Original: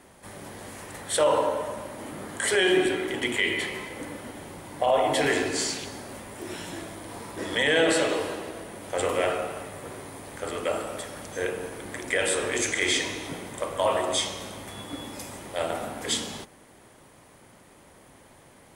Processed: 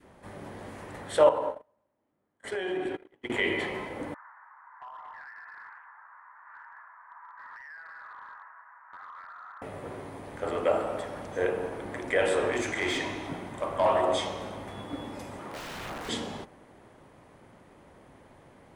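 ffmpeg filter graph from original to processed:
ffmpeg -i in.wav -filter_complex "[0:a]asettb=1/sr,asplit=3[link_01][link_02][link_03];[link_01]atrim=end=1.294[link_04];[link_02]atrim=start=1.29:end=3.3,asetpts=PTS-STARTPTS,afade=type=in:duration=0.004:curve=qsin,afade=type=out:start_time=2.006:duration=0.004:curve=qsin,agate=range=-40dB:threshold=-26dB:ratio=16:release=100:detection=peak,acompressor=threshold=-28dB:ratio=12:attack=3.2:release=140:knee=1:detection=peak[link_05];[link_03]atrim=start=3.296[link_06];[link_04][link_05]acrossfade=duration=0.004:curve1=hsin:curve2=qsin[link_07];[link_07][link_06]acrossfade=duration=0.004:curve1=qsin:curve2=hsin,asettb=1/sr,asplit=3[link_08][link_09][link_10];[link_08]atrim=end=4.144[link_11];[link_09]atrim=start=4.14:end=9.62,asetpts=PTS-STARTPTS,afade=type=in:duration=0.004:curve=qsin,afade=type=out:start_time=5.476:duration=0.004:curve=qsin,asuperpass=centerf=1300:order=8:qfactor=1.5,acompressor=threshold=-38dB:ratio=16:attack=3.2:release=140:knee=1:detection=peak,asoftclip=type=hard:threshold=-38.5dB[link_12];[link_10]atrim=start=9.616[link_13];[link_11][link_12]acrossfade=duration=0.004:curve1=hsin:curve2=qsin[link_14];[link_14][link_13]acrossfade=duration=0.004:curve1=qsin:curve2=hsin,asettb=1/sr,asplit=3[link_15][link_16][link_17];[link_15]atrim=end=12.524[link_18];[link_16]atrim=start=12.52:end=14.03,asetpts=PTS-STARTPTS,afade=type=in:duration=0.004:curve=qsin,afade=type=out:start_time=1.506:duration=0.004:curve=qsin,volume=20dB,asoftclip=hard,volume=-20dB,equalizer=frequency=480:width_type=o:width=0.36:gain=-7.5[link_19];[link_17]atrim=start=14.026[link_20];[link_18][link_19]acrossfade=duration=0.004:curve1=hsin:curve2=qsin[link_21];[link_21][link_20]acrossfade=duration=0.004:curve1=qsin:curve2=hsin,asettb=1/sr,asplit=3[link_22][link_23][link_24];[link_22]atrim=end=15.394[link_25];[link_23]atrim=start=15.39:end=16.09,asetpts=PTS-STARTPTS,afade=type=in:duration=0.004:curve=qsin,afade=type=out:start_time=0.696:duration=0.004:curve=qsin,highpass=130,equalizer=frequency=1200:width_type=o:width=0.67:gain=8.5,aeval=exprs='(mod(29.9*val(0)+1,2)-1)/29.9':channel_layout=same[link_26];[link_24]atrim=start=16.086[link_27];[link_25][link_26]acrossfade=duration=0.004:curve1=hsin:curve2=qsin[link_28];[link_28][link_27]acrossfade=duration=0.004:curve1=qsin:curve2=hsin,lowpass=frequency=1600:poles=1,adynamicequalizer=threshold=0.01:dfrequency=770:dqfactor=0.92:tfrequency=770:tqfactor=0.92:attack=5:release=100:ratio=0.375:range=2.5:mode=boostabove:tftype=bell" out.wav

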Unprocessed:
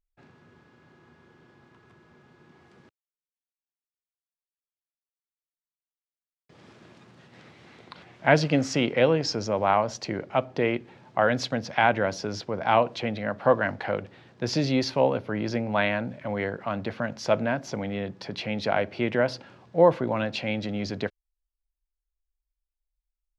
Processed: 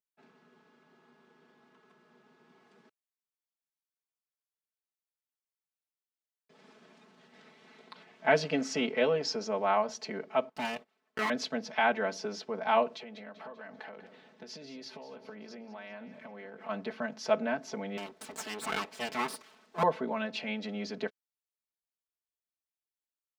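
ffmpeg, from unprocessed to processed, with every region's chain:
ffmpeg -i in.wav -filter_complex "[0:a]asettb=1/sr,asplit=3[link_01][link_02][link_03];[link_01]atrim=end=10.494[link_04];[link_02]atrim=start=10.49:end=11.3,asetpts=PTS-STARTPTS,afade=type=in:duration=0.004:curve=qsin,afade=type=out:start_time=0.806:duration=0.004:curve=qsin,agate=range=-17dB:threshold=-43dB:ratio=16:release=100:detection=peak,aeval=exprs='abs(val(0))':channel_layout=same[link_05];[link_03]atrim=start=11.296[link_06];[link_04][link_05]acrossfade=duration=0.004:curve1=hsin:curve2=qsin[link_07];[link_07][link_06]acrossfade=duration=0.004:curve1=qsin:curve2=hsin,asettb=1/sr,asplit=3[link_08][link_09][link_10];[link_08]atrim=end=12.884[link_11];[link_09]atrim=start=12.88:end=16.69,asetpts=PTS-STARTPTS,afade=type=in:duration=0.004:curve=qsin,afade=type=out:start_time=3.806:duration=0.004:curve=qsin,acompressor=threshold=-35dB:ratio=16:attack=3.2:release=140:knee=1:detection=peak,aecho=1:1:195|390|585|780|975:0.211|0.101|0.0487|0.0234|0.0112,atrim=end_sample=168021[link_12];[link_10]atrim=start=16.686[link_13];[link_11][link_12]acrossfade=duration=0.004:curve1=hsin:curve2=qsin[link_14];[link_14][link_13]acrossfade=duration=0.004:curve1=qsin:curve2=hsin,asettb=1/sr,asplit=3[link_15][link_16][link_17];[link_15]atrim=end=17.974[link_18];[link_16]atrim=start=17.97:end=19.83,asetpts=PTS-STARTPTS,afade=type=in:duration=0.004:curve=qsin,afade=type=out:start_time=1.856:duration=0.004:curve=qsin,highshelf=frequency=2800:gain=7.5,aeval=exprs='abs(val(0))':channel_layout=same[link_19];[link_17]atrim=start=19.826[link_20];[link_18][link_19]acrossfade=duration=0.004:curve1=hsin:curve2=qsin[link_21];[link_21][link_20]acrossfade=duration=0.004:curve1=qsin:curve2=hsin,highpass=230,aecho=1:1:4.6:0.99,volume=-8dB" out.wav

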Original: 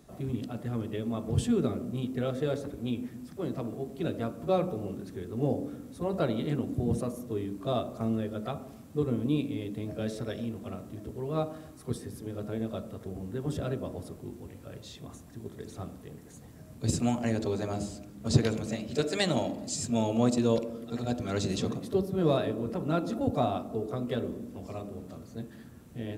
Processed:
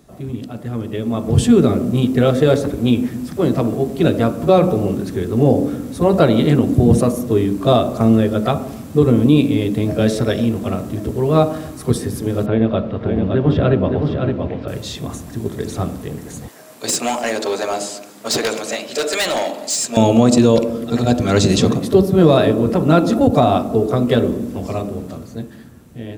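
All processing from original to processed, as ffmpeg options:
ffmpeg -i in.wav -filter_complex "[0:a]asettb=1/sr,asplit=3[link_01][link_02][link_03];[link_01]atrim=end=12.464[link_04];[link_02]atrim=start=12.46:end=14.68,asetpts=PTS-STARTPTS,afade=type=in:duration=0.004:curve=qsin,afade=type=out:start_time=2.216:duration=0.004:curve=qsin,lowpass=frequency=3500:width=0.5412,lowpass=frequency=3500:width=1.3066,aecho=1:1:566:0.531,atrim=end_sample=97902[link_05];[link_03]atrim=start=14.676[link_06];[link_04][link_05]acrossfade=duration=0.004:curve1=hsin:curve2=qsin[link_07];[link_07][link_06]acrossfade=duration=0.004:curve1=qsin:curve2=hsin,asettb=1/sr,asplit=3[link_08][link_09][link_10];[link_08]atrim=end=16.484[link_11];[link_09]atrim=start=16.48:end=19.97,asetpts=PTS-STARTPTS,afade=type=in:duration=0.004:curve=qsin,afade=type=out:start_time=3.486:duration=0.004:curve=qsin,highpass=580,volume=32dB,asoftclip=hard,volume=-32dB,aecho=1:1:250:0.0708,atrim=end_sample=153909[link_12];[link_10]atrim=start=19.966[link_13];[link_11][link_12]acrossfade=duration=0.004:curve1=hsin:curve2=qsin[link_14];[link_14][link_13]acrossfade=duration=0.004:curve1=qsin:curve2=hsin,dynaudnorm=framelen=120:gausssize=21:maxgain=11.5dB,alimiter=level_in=7.5dB:limit=-1dB:release=50:level=0:latency=1,volume=-1dB" out.wav

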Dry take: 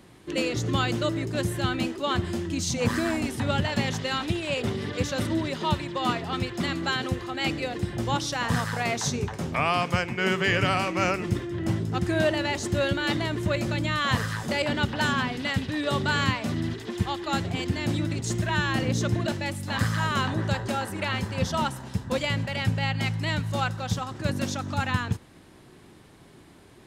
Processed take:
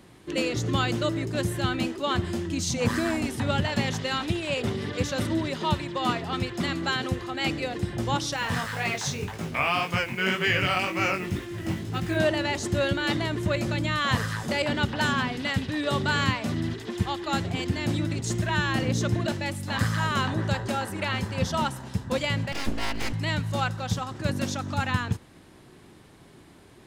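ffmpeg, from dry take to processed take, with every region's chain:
ffmpeg -i in.wav -filter_complex "[0:a]asettb=1/sr,asplit=3[link_01][link_02][link_03];[link_01]atrim=end=8.364[link_04];[link_02]atrim=start=8.36:end=12.17,asetpts=PTS-STARTPTS,afade=type=in:duration=0.004:curve=qsin,afade=type=out:start_time=3.806:duration=0.004:curve=qsin,equalizer=frequency=2500:width=1.1:gain=5.5,acrusher=bits=6:mix=0:aa=0.5,flanger=delay=18:depth=4.4:speed=1.9[link_05];[link_03]atrim=start=12.166[link_06];[link_04][link_05]acrossfade=duration=0.004:curve1=hsin:curve2=qsin[link_07];[link_07][link_06]acrossfade=duration=0.004:curve1=qsin:curve2=hsin,asettb=1/sr,asplit=3[link_08][link_09][link_10];[link_08]atrim=end=22.524[link_11];[link_09]atrim=start=22.52:end=23.13,asetpts=PTS-STARTPTS,afade=type=in:duration=0.004:curve=qsin,afade=type=out:start_time=0.606:duration=0.004:curve=qsin,highpass=73,aeval=exprs='abs(val(0))':channel_layout=same[link_12];[link_10]atrim=start=23.126[link_13];[link_11][link_12]acrossfade=duration=0.004:curve1=hsin:curve2=qsin[link_14];[link_14][link_13]acrossfade=duration=0.004:curve1=qsin:curve2=hsin" out.wav

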